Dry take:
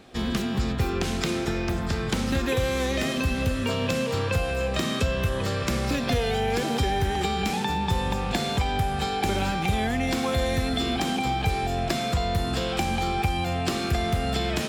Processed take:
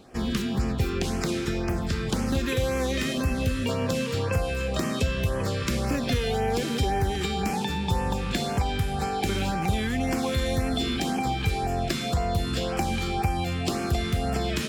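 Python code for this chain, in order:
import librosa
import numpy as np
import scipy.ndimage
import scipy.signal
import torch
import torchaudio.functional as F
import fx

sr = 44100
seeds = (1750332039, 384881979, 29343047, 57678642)

y = fx.filter_lfo_notch(x, sr, shape='sine', hz=1.9, low_hz=670.0, high_hz=3800.0, q=1.1)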